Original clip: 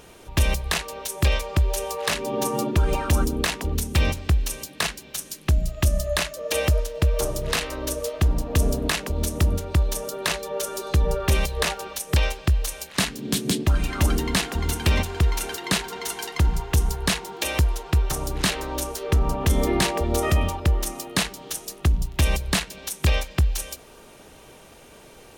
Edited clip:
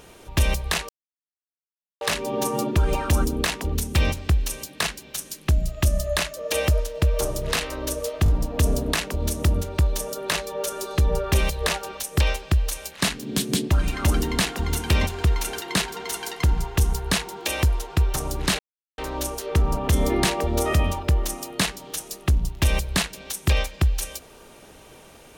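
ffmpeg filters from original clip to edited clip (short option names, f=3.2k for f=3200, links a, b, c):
-filter_complex "[0:a]asplit=6[a][b][c][d][e][f];[a]atrim=end=0.89,asetpts=PTS-STARTPTS,afade=t=out:st=0.886:d=0.004:c=hsin[g];[b]atrim=start=0.89:end=2.01,asetpts=PTS-STARTPTS,volume=0[h];[c]atrim=start=2.01:end=8.262,asetpts=PTS-STARTPTS,afade=t=in:d=0.004:c=hsin[i];[d]atrim=start=8.238:end=8.262[j];[e]atrim=start=8.238:end=18.55,asetpts=PTS-STARTPTS,afade=t=out:st=10.308:d=0.004:c=hsin,apad=pad_dur=0.39[k];[f]atrim=start=18.55,asetpts=PTS-STARTPTS,afade=t=in:d=0.004:c=hsin[l];[g][h][i]concat=n=3:v=0:a=1[m];[m][j]acrossfade=d=0.004:c1=hsin:c2=hsin[n];[k][l]concat=n=2:v=0:a=1[o];[n][o]acrossfade=d=0.004:c1=hsin:c2=hsin"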